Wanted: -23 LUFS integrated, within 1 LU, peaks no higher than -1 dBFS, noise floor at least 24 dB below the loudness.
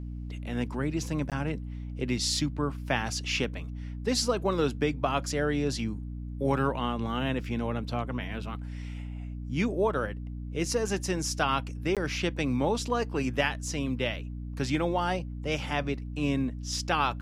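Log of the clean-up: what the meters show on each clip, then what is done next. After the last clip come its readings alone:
dropouts 2; longest dropout 17 ms; hum 60 Hz; harmonics up to 300 Hz; hum level -35 dBFS; loudness -30.5 LUFS; peak -11.5 dBFS; loudness target -23.0 LUFS
-> interpolate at 1.3/11.95, 17 ms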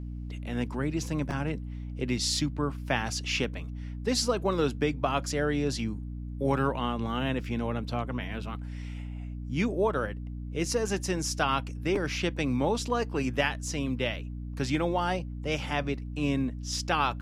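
dropouts 0; hum 60 Hz; harmonics up to 300 Hz; hum level -35 dBFS
-> notches 60/120/180/240/300 Hz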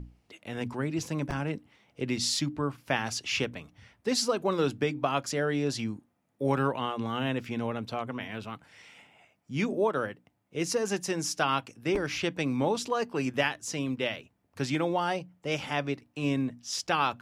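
hum none; loudness -30.5 LUFS; peak -12.0 dBFS; loudness target -23.0 LUFS
-> gain +7.5 dB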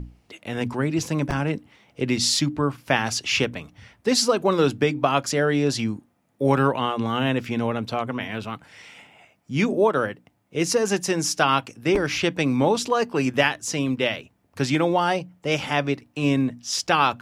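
loudness -23.0 LUFS; peak -4.5 dBFS; noise floor -65 dBFS

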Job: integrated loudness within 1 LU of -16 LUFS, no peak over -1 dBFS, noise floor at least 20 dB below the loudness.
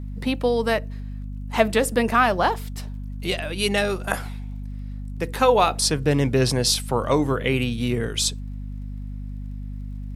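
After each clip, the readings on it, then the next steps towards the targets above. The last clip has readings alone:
ticks 23/s; hum 50 Hz; harmonics up to 250 Hz; hum level -30 dBFS; loudness -22.0 LUFS; peak -3.5 dBFS; loudness target -16.0 LUFS
-> de-click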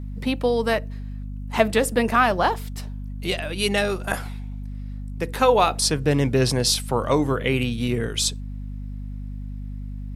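ticks 0.30/s; hum 50 Hz; harmonics up to 250 Hz; hum level -30 dBFS
-> notches 50/100/150/200/250 Hz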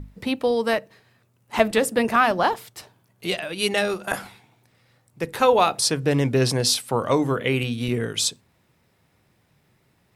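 hum none; loudness -22.5 LUFS; peak -3.5 dBFS; loudness target -16.0 LUFS
-> gain +6.5 dB; limiter -1 dBFS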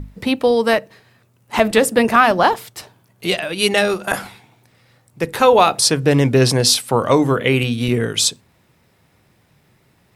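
loudness -16.0 LUFS; peak -1.0 dBFS; noise floor -58 dBFS

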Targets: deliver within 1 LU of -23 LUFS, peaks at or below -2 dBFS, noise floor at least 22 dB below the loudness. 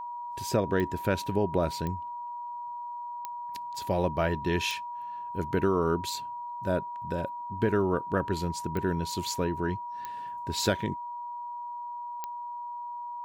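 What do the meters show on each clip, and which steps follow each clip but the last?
clicks 7; steady tone 960 Hz; tone level -35 dBFS; loudness -31.5 LUFS; peak -12.0 dBFS; loudness target -23.0 LUFS
-> de-click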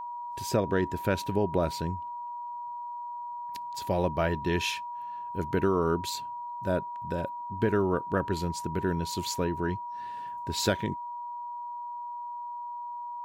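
clicks 0; steady tone 960 Hz; tone level -35 dBFS
-> notch 960 Hz, Q 30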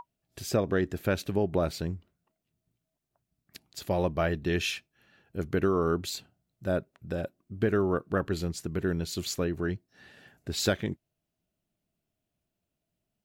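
steady tone none; loudness -30.5 LUFS; peak -12.0 dBFS; loudness target -23.0 LUFS
-> gain +7.5 dB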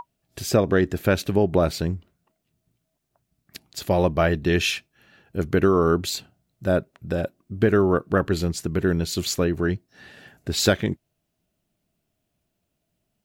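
loudness -23.0 LUFS; peak -4.5 dBFS; noise floor -77 dBFS

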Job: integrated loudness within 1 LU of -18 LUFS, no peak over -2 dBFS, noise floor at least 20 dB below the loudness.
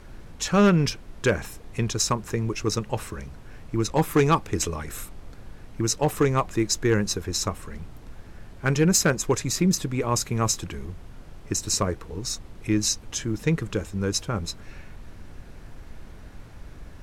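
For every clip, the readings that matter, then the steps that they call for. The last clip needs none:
clipped 0.3%; flat tops at -12.5 dBFS; noise floor -44 dBFS; noise floor target -45 dBFS; loudness -25.0 LUFS; peak -12.5 dBFS; loudness target -18.0 LUFS
-> clip repair -12.5 dBFS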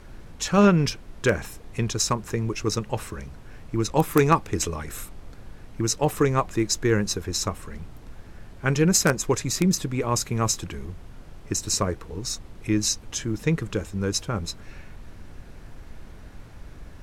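clipped 0.0%; noise floor -44 dBFS; noise floor target -45 dBFS
-> noise print and reduce 6 dB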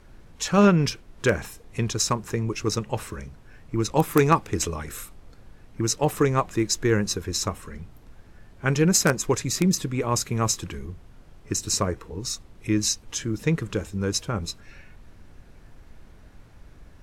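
noise floor -50 dBFS; loudness -24.5 LUFS; peak -3.5 dBFS; loudness target -18.0 LUFS
-> gain +6.5 dB; limiter -2 dBFS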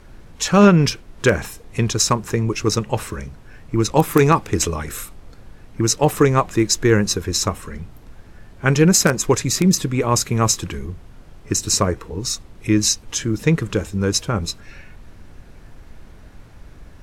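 loudness -18.5 LUFS; peak -2.0 dBFS; noise floor -44 dBFS

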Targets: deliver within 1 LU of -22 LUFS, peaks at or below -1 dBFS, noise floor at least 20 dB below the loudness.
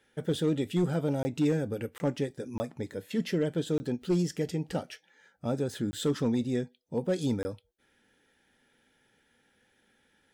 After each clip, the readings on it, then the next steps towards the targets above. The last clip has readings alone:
clipped 0.4%; flat tops at -20.0 dBFS; dropouts 6; longest dropout 20 ms; loudness -31.5 LUFS; peak -20.0 dBFS; loudness target -22.0 LUFS
-> clip repair -20 dBFS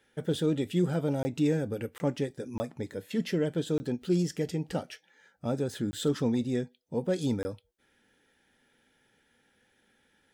clipped 0.0%; dropouts 6; longest dropout 20 ms
-> interpolate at 1.23/1.98/2.58/3.78/5.91/7.43, 20 ms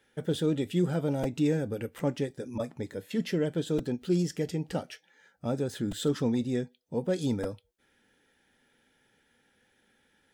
dropouts 0; loudness -31.0 LUFS; peak -16.5 dBFS; loudness target -22.0 LUFS
-> gain +9 dB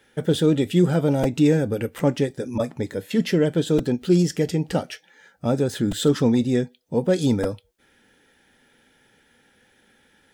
loudness -22.0 LUFS; peak -7.5 dBFS; noise floor -61 dBFS

